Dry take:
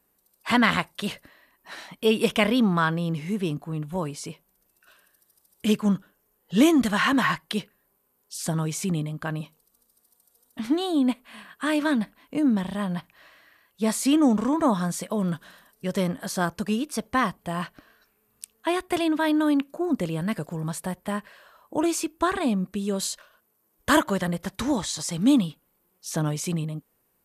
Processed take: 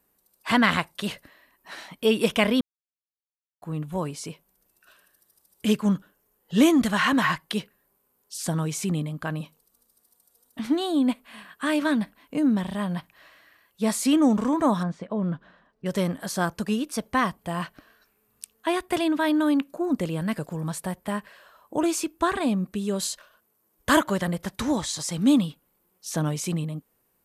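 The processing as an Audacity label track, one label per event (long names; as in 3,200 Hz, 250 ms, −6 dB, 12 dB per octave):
2.610000	3.620000	silence
14.830000	15.860000	head-to-tape spacing loss at 10 kHz 36 dB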